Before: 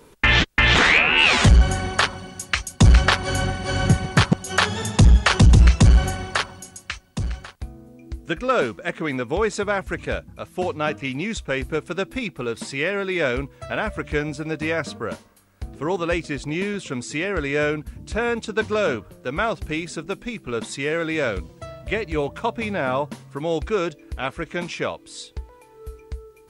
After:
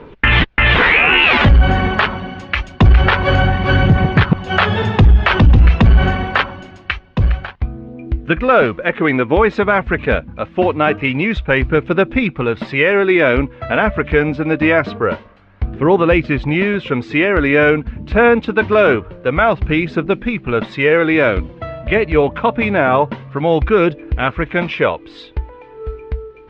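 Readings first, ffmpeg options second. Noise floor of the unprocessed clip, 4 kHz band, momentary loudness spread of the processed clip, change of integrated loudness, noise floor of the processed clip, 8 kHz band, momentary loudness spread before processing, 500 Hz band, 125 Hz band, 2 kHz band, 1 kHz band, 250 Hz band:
−50 dBFS, +2.0 dB, 14 LU, +7.0 dB, −40 dBFS, below −20 dB, 17 LU, +10.0 dB, +5.5 dB, +7.5 dB, +8.5 dB, +9.0 dB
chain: -af "lowpass=frequency=3000:width=0.5412,lowpass=frequency=3000:width=1.3066,aphaser=in_gain=1:out_gain=1:delay=4.8:decay=0.28:speed=0.25:type=triangular,alimiter=level_in=12.5dB:limit=-1dB:release=50:level=0:latency=1,volume=-1.5dB"

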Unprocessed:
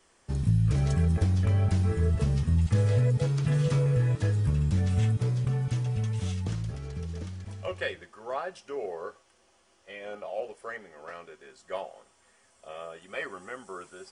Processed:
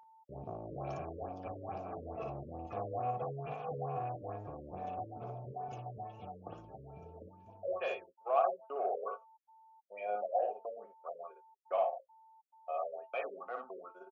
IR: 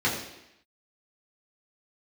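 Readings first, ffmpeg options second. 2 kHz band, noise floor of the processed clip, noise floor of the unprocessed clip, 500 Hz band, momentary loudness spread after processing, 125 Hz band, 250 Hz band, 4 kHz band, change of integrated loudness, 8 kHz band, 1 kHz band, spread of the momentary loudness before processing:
−10.5 dB, −64 dBFS, −64 dBFS, −2.0 dB, 16 LU, −23.5 dB, −17.5 dB, −16.5 dB, −11.5 dB, below −25 dB, +5.0 dB, 18 LU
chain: -filter_complex "[0:a]afftdn=noise_reduction=21:noise_floor=-43,bandreject=frequency=220.6:width_type=h:width=4,bandreject=frequency=441.2:width_type=h:width=4,bandreject=frequency=661.8:width_type=h:width=4,bandreject=frequency=882.4:width_type=h:width=4,bandreject=frequency=1103:width_type=h:width=4,bandreject=frequency=1323.6:width_type=h:width=4,bandreject=frequency=1544.2:width_type=h:width=4,agate=range=-48dB:threshold=-46dB:ratio=16:detection=peak,adynamicequalizer=threshold=0.0158:dfrequency=110:dqfactor=3.3:tfrequency=110:tqfactor=3.3:attack=5:release=100:ratio=0.375:range=2:mode=cutabove:tftype=bell,acrossover=split=220|490|1700[link_01][link_02][link_03][link_04];[link_04]asoftclip=type=hard:threshold=-35dB[link_05];[link_01][link_02][link_03][link_05]amix=inputs=4:normalize=0,aexciter=amount=7.2:drive=3.2:freq=6300,asoftclip=type=tanh:threshold=-28dB,asplit=3[link_06][link_07][link_08];[link_06]bandpass=frequency=730:width_type=q:width=8,volume=0dB[link_09];[link_07]bandpass=frequency=1090:width_type=q:width=8,volume=-6dB[link_10];[link_08]bandpass=frequency=2440:width_type=q:width=8,volume=-9dB[link_11];[link_09][link_10][link_11]amix=inputs=3:normalize=0,aeval=exprs='val(0)+0.000398*sin(2*PI*890*n/s)':channel_layout=same,aecho=1:1:58|73:0.596|0.133,afftfilt=real='re*lt(b*sr/1024,570*pow(7400/570,0.5+0.5*sin(2*PI*2.3*pts/sr)))':imag='im*lt(b*sr/1024,570*pow(7400/570,0.5+0.5*sin(2*PI*2.3*pts/sr)))':win_size=1024:overlap=0.75,volume=11.5dB"

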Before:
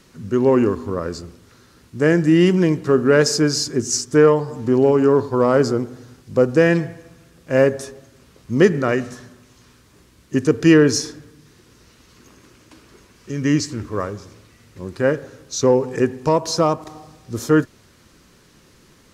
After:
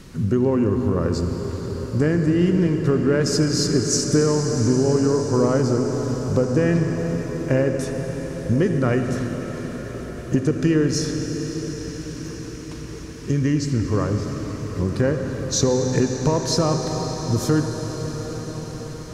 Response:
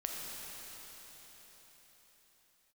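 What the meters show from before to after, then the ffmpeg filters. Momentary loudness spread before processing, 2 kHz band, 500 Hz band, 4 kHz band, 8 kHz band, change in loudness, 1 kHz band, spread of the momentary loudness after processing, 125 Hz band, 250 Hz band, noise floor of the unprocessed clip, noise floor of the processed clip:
16 LU, −6.5 dB, −4.5 dB, −1.0 dB, 0.0 dB, −4.0 dB, −4.5 dB, 12 LU, +3.5 dB, −1.5 dB, −53 dBFS, −34 dBFS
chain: -filter_complex "[0:a]lowshelf=frequency=220:gain=11.5,acompressor=threshold=-22dB:ratio=6,asplit=2[link_01][link_02];[1:a]atrim=start_sample=2205,asetrate=23814,aresample=44100[link_03];[link_02][link_03]afir=irnorm=-1:irlink=0,volume=-4.5dB[link_04];[link_01][link_04]amix=inputs=2:normalize=0"

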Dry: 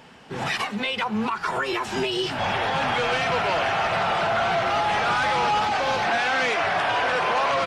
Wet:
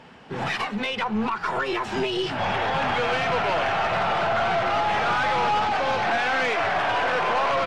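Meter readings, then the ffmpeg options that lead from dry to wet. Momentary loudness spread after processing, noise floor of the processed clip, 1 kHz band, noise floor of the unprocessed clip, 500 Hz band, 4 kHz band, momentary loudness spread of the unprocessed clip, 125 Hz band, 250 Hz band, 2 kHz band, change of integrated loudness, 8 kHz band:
4 LU, −35 dBFS, 0.0 dB, −35 dBFS, 0.0 dB, −2.5 dB, 4 LU, 0.0 dB, +0.5 dB, −1.0 dB, −0.5 dB, −5.0 dB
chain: -af "aemphasis=mode=reproduction:type=50kf,aeval=exprs='0.168*(cos(1*acos(clip(val(0)/0.168,-1,1)))-cos(1*PI/2))+0.0106*(cos(4*acos(clip(val(0)/0.168,-1,1)))-cos(4*PI/2))+0.00531*(cos(5*acos(clip(val(0)/0.168,-1,1)))-cos(5*PI/2))':channel_layout=same"

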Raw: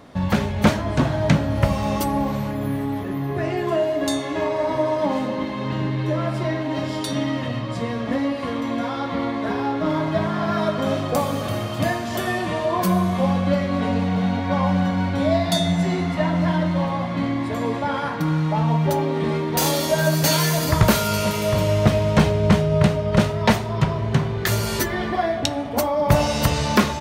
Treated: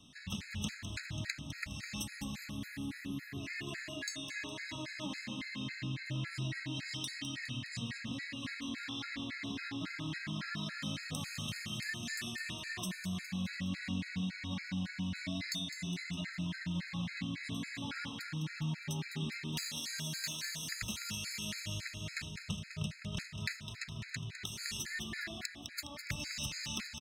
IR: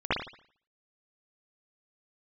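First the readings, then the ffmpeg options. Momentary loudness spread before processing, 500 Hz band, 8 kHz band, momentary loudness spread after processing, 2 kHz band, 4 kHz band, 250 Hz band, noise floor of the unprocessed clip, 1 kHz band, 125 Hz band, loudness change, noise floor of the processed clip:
7 LU, −32.5 dB, −12.0 dB, 4 LU, −12.0 dB, −10.5 dB, −19.5 dB, −27 dBFS, −28.5 dB, −19.5 dB, −18.0 dB, −50 dBFS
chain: -filter_complex "[0:a]firequalizer=gain_entry='entry(230,0);entry(490,-17);entry(1100,-9);entry(1800,10);entry(6700,14);entry(14000,1)':delay=0.05:min_phase=1,acrossover=split=260|5500[link_01][link_02][link_03];[link_03]alimiter=limit=-10.5dB:level=0:latency=1:release=408[link_04];[link_01][link_02][link_04]amix=inputs=3:normalize=0,aeval=exprs='1.78*(cos(1*acos(clip(val(0)/1.78,-1,1)))-cos(1*PI/2))+0.126*(cos(7*acos(clip(val(0)/1.78,-1,1)))-cos(7*PI/2))':channel_layout=same,acompressor=threshold=-28dB:ratio=6,aecho=1:1:206|412|618|824|1030|1236:0.355|0.192|0.103|0.0559|0.0302|0.0163,afftfilt=real='re*gt(sin(2*PI*3.6*pts/sr)*(1-2*mod(floor(b*sr/1024/1300),2)),0)':imag='im*gt(sin(2*PI*3.6*pts/sr)*(1-2*mod(floor(b*sr/1024/1300),2)),0)':win_size=1024:overlap=0.75,volume=-6.5dB"

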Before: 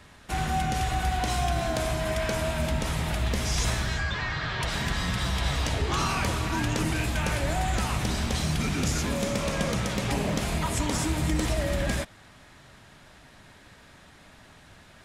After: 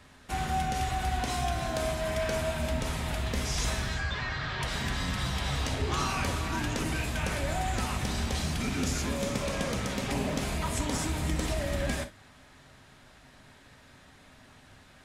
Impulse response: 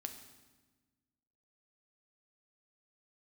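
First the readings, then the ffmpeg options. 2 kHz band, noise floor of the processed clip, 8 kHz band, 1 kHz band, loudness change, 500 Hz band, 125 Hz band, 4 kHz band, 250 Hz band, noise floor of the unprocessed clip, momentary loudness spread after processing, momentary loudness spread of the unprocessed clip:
−3.0 dB, −56 dBFS, −3.0 dB, −2.5 dB, −3.5 dB, −2.5 dB, −4.0 dB, −3.0 dB, −3.5 dB, −53 dBFS, 2 LU, 2 LU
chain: -filter_complex "[1:a]atrim=start_sample=2205,atrim=end_sample=3087[link_01];[0:a][link_01]afir=irnorm=-1:irlink=0"

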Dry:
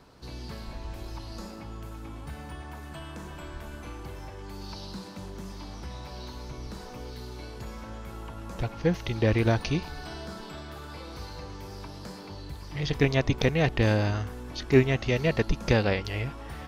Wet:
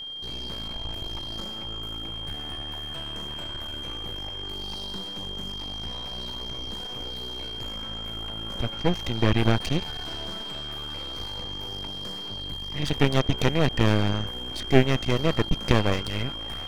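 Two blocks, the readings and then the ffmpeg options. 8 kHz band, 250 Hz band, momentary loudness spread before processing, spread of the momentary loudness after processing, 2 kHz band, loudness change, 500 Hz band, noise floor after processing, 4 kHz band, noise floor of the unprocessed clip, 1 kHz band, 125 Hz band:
+3.0 dB, +2.0 dB, 17 LU, 10 LU, 0.0 dB, +0.5 dB, 0.0 dB, −36 dBFS, +12.5 dB, −42 dBFS, +3.5 dB, +1.0 dB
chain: -af "aeval=exprs='max(val(0),0)':channel_layout=same,aeval=exprs='val(0)+0.0112*sin(2*PI*3200*n/s)':channel_layout=same,volume=5dB"

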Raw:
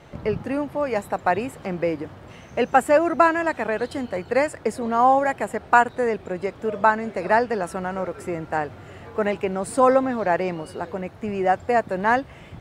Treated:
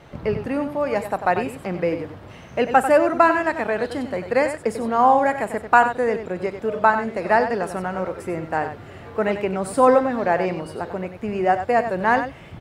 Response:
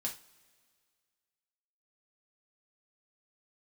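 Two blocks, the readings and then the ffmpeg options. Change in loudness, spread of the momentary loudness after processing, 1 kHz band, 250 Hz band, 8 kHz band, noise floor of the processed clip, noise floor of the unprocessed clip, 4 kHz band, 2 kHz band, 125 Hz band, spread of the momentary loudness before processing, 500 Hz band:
+1.5 dB, 13 LU, +1.5 dB, +1.5 dB, −0.5 dB, −42 dBFS, −45 dBFS, +1.0 dB, +1.5 dB, +1.5 dB, 13 LU, +1.5 dB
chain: -af "equalizer=frequency=7200:width=2.2:gain=-3.5,aecho=1:1:43|94:0.126|0.335,volume=1dB"

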